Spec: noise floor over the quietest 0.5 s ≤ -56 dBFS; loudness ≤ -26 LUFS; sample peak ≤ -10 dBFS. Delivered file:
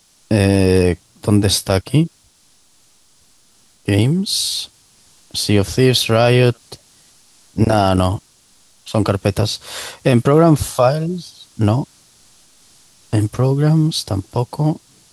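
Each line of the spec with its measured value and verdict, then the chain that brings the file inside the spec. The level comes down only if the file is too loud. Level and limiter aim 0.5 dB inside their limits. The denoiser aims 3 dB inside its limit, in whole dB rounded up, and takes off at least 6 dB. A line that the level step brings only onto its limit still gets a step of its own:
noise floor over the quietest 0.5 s -54 dBFS: fail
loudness -16.5 LUFS: fail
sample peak -1.5 dBFS: fail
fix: trim -10 dB

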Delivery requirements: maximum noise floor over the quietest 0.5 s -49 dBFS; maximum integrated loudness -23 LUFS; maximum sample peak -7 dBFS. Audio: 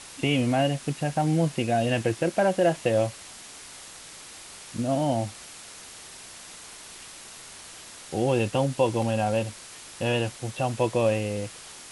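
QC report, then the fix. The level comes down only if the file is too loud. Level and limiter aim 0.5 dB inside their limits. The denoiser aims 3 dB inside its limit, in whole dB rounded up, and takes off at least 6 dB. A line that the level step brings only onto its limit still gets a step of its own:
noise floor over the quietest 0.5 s -44 dBFS: fail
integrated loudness -26.0 LUFS: pass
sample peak -9.0 dBFS: pass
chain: noise reduction 8 dB, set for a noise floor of -44 dBFS

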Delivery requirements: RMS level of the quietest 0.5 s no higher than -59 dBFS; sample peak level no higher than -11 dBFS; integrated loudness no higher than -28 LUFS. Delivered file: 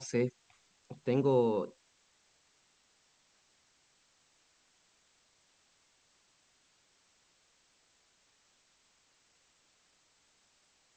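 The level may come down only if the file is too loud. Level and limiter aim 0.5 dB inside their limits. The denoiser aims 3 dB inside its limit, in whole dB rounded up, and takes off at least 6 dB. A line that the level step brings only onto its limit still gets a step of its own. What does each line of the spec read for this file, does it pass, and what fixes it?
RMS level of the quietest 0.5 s -71 dBFS: pass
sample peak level -17.0 dBFS: pass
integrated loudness -32.0 LUFS: pass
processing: none needed

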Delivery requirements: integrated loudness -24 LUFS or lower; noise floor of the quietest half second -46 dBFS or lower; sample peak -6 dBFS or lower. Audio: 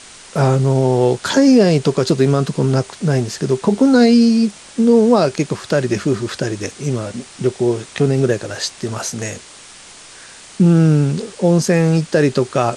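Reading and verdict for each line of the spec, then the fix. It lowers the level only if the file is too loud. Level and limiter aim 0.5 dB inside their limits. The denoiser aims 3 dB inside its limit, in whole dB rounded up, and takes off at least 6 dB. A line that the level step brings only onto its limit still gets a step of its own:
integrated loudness -16.0 LUFS: fail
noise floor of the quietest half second -40 dBFS: fail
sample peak -3.0 dBFS: fail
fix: trim -8.5 dB

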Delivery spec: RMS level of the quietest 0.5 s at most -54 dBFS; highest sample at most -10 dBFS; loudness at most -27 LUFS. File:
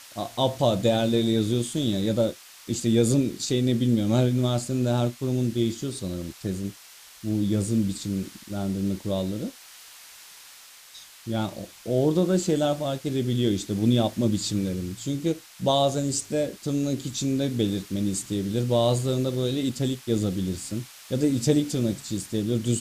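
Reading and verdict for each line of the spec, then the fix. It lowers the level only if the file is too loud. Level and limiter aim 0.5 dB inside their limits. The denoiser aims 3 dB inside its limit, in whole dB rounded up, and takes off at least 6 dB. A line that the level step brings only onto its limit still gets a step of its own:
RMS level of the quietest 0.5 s -49 dBFS: fail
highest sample -9.0 dBFS: fail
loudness -26.0 LUFS: fail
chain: noise reduction 7 dB, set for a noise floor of -49 dBFS; trim -1.5 dB

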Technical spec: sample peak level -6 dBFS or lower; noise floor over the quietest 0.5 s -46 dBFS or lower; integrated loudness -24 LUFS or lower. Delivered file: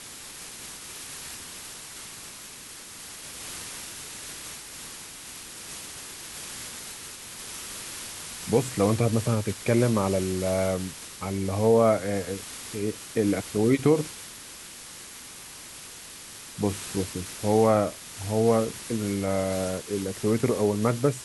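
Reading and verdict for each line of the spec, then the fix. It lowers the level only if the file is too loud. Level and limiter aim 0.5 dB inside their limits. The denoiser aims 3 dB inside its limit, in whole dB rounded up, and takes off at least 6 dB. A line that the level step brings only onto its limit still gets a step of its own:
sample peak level -8.5 dBFS: pass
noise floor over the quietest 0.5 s -43 dBFS: fail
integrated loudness -27.5 LUFS: pass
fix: noise reduction 6 dB, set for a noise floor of -43 dBFS

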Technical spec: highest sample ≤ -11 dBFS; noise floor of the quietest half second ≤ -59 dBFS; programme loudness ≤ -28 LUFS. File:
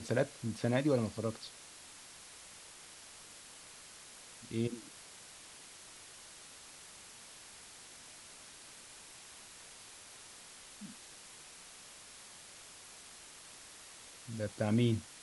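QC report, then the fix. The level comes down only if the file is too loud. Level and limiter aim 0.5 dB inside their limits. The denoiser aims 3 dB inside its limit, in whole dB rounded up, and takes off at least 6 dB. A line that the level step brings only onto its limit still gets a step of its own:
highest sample -18.5 dBFS: pass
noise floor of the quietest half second -54 dBFS: fail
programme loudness -42.0 LUFS: pass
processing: noise reduction 8 dB, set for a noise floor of -54 dBFS

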